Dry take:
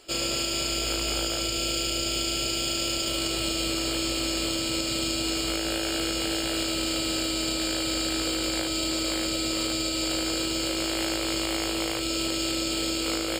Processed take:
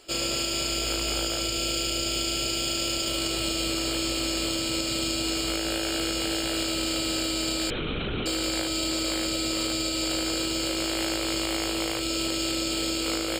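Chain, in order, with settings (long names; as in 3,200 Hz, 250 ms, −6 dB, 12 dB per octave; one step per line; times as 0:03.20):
0:07.70–0:08.26: linear-prediction vocoder at 8 kHz whisper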